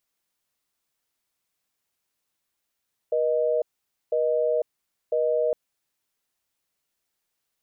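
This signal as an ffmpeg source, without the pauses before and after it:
ffmpeg -f lavfi -i "aevalsrc='0.0708*(sin(2*PI*480*t)+sin(2*PI*620*t))*clip(min(mod(t,1),0.5-mod(t,1))/0.005,0,1)':duration=2.41:sample_rate=44100" out.wav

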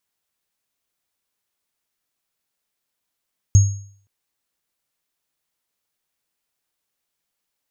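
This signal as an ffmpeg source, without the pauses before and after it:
ffmpeg -f lavfi -i "aevalsrc='0.562*pow(10,-3*t/0.53)*sin(2*PI*99.5*t)+0.126*pow(10,-3*t/0.52)*sin(2*PI*6550*t)':duration=0.52:sample_rate=44100" out.wav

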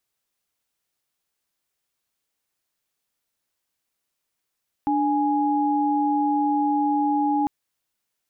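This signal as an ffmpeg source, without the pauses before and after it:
ffmpeg -f lavfi -i "aevalsrc='0.0841*(sin(2*PI*293.66*t)+sin(2*PI*830.61*t))':duration=2.6:sample_rate=44100" out.wav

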